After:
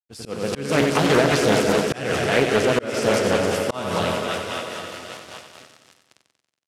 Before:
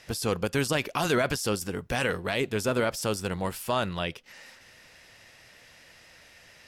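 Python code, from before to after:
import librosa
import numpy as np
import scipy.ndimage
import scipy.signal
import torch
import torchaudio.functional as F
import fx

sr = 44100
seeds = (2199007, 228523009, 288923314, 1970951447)

y = fx.reverse_delay_fb(x, sr, ms=231, feedback_pct=67, wet_db=-8.5)
y = fx.doubler(y, sr, ms=14.0, db=-13.0)
y = fx.echo_thinned(y, sr, ms=265, feedback_pct=73, hz=240.0, wet_db=-6.0)
y = np.where(np.abs(y) >= 10.0 ** (-37.5 / 20.0), y, 0.0)
y = scipy.signal.sosfilt(scipy.signal.butter(4, 100.0, 'highpass', fs=sr, output='sos'), y)
y = fx.peak_eq(y, sr, hz=140.0, db=-8.5, octaves=2.2)
y = fx.rotary(y, sr, hz=5.0)
y = scipy.signal.sosfilt(scipy.signal.butter(2, 9600.0, 'lowpass', fs=sr, output='sos'), y)
y = fx.low_shelf(y, sr, hz=380.0, db=10.5)
y = fx.echo_feedback(y, sr, ms=93, feedback_pct=60, wet_db=-8.0)
y = fx.auto_swell(y, sr, attack_ms=268.0)
y = fx.doppler_dist(y, sr, depth_ms=0.43)
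y = y * librosa.db_to_amplitude(7.0)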